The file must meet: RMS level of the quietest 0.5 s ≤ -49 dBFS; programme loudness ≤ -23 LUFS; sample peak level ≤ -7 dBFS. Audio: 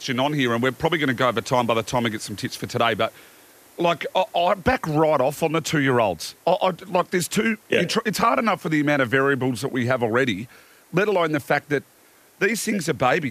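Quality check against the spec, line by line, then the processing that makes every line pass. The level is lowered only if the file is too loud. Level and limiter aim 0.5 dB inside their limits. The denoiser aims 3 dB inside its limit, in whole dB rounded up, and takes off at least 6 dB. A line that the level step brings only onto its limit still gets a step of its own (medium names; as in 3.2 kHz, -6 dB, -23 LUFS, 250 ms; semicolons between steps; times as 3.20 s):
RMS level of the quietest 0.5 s -54 dBFS: pass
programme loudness -22.0 LUFS: fail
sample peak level -6.0 dBFS: fail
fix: trim -1.5 dB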